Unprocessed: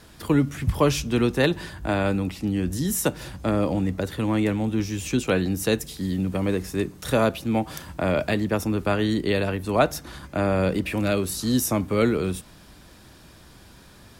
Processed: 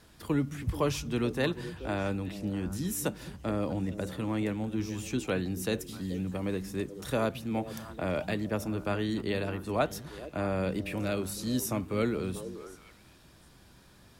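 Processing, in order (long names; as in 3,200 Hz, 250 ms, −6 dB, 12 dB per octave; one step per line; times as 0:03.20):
echo through a band-pass that steps 215 ms, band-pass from 150 Hz, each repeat 1.4 octaves, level −7 dB
level −8.5 dB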